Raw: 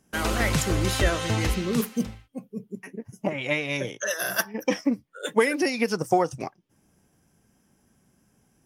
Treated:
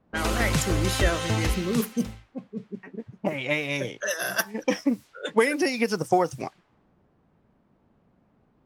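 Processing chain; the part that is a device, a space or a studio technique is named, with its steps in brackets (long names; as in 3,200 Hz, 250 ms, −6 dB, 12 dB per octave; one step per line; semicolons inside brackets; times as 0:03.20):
cassette deck with a dynamic noise filter (white noise bed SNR 29 dB; low-pass that shuts in the quiet parts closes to 720 Hz, open at −23.5 dBFS)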